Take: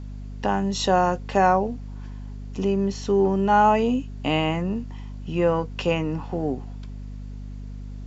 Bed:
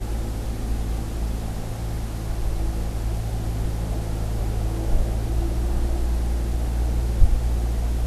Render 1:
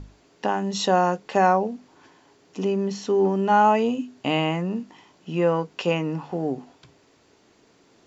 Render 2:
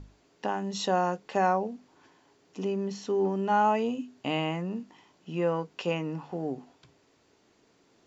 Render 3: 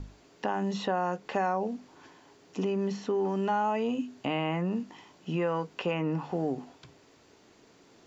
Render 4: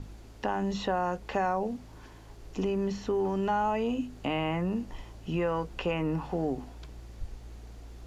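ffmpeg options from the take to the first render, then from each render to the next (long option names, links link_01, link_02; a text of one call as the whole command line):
ffmpeg -i in.wav -af "bandreject=frequency=50:width_type=h:width=6,bandreject=frequency=100:width_type=h:width=6,bandreject=frequency=150:width_type=h:width=6,bandreject=frequency=200:width_type=h:width=6,bandreject=frequency=250:width_type=h:width=6" out.wav
ffmpeg -i in.wav -af "volume=-6.5dB" out.wav
ffmpeg -i in.wav -filter_complex "[0:a]acrossover=split=890|2700[link_01][link_02][link_03];[link_01]acompressor=threshold=-32dB:ratio=4[link_04];[link_02]acompressor=threshold=-36dB:ratio=4[link_05];[link_03]acompressor=threshold=-58dB:ratio=4[link_06];[link_04][link_05][link_06]amix=inputs=3:normalize=0,asplit=2[link_07][link_08];[link_08]alimiter=level_in=5dB:limit=-24dB:level=0:latency=1,volume=-5dB,volume=0dB[link_09];[link_07][link_09]amix=inputs=2:normalize=0" out.wav
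ffmpeg -i in.wav -i bed.wav -filter_complex "[1:a]volume=-23dB[link_01];[0:a][link_01]amix=inputs=2:normalize=0" out.wav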